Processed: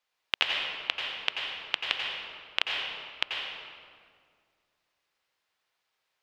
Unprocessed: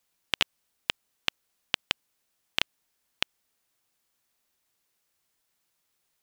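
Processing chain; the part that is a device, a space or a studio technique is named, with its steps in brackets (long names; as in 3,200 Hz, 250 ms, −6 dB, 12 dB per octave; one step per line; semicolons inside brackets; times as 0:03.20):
three-way crossover with the lows and the highs turned down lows −14 dB, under 450 Hz, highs −17 dB, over 4,800 Hz
stairwell (convolution reverb RT60 2.0 s, pre-delay 82 ms, DRR −1 dB)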